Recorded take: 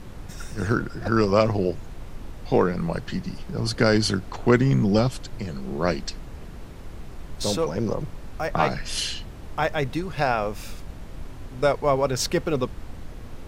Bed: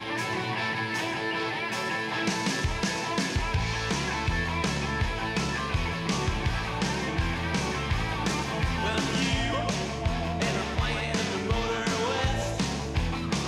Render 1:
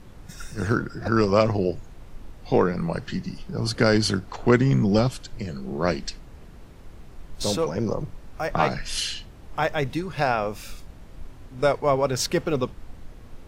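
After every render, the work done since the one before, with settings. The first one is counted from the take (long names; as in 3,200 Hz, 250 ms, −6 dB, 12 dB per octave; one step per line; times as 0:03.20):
noise reduction from a noise print 6 dB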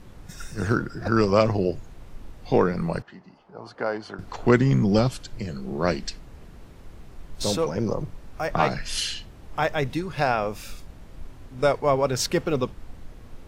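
0:03.02–0:04.19: resonant band-pass 840 Hz, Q 1.8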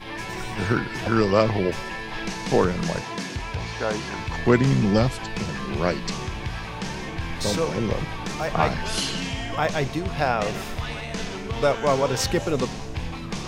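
mix in bed −3 dB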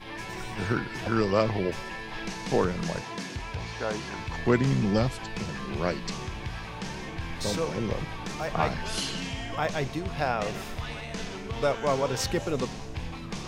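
level −5 dB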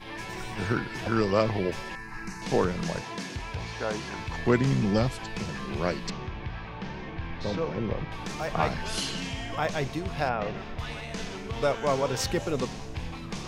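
0:01.95–0:02.42: phaser with its sweep stopped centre 1,400 Hz, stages 4
0:06.10–0:08.12: high-frequency loss of the air 230 metres
0:10.29–0:10.79: high-frequency loss of the air 230 metres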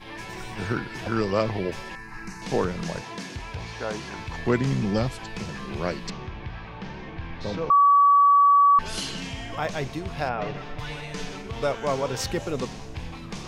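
0:07.70–0:08.79: beep over 1,140 Hz −13 dBFS
0:10.37–0:11.42: comb filter 6.8 ms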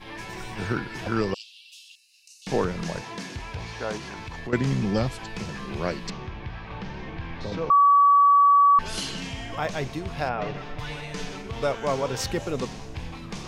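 0:01.34–0:02.47: Chebyshev high-pass with heavy ripple 2,700 Hz, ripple 3 dB
0:03.97–0:04.53: downward compressor 3 to 1, threshold −33 dBFS
0:06.70–0:07.52: multiband upward and downward compressor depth 70%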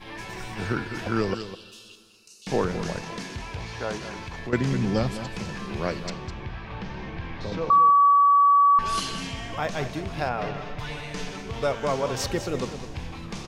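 on a send: single-tap delay 205 ms −11 dB
on the sum: dense smooth reverb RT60 2.4 s, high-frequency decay 0.55×, DRR 18.5 dB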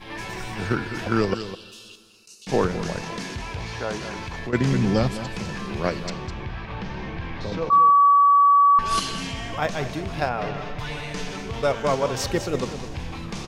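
in parallel at −3 dB: output level in coarse steps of 13 dB
on the sum: level that may rise only so fast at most 340 dB per second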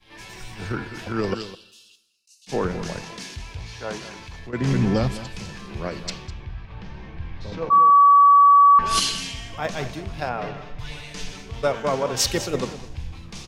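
brickwall limiter −14 dBFS, peak gain reduction 6.5 dB
multiband upward and downward expander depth 100%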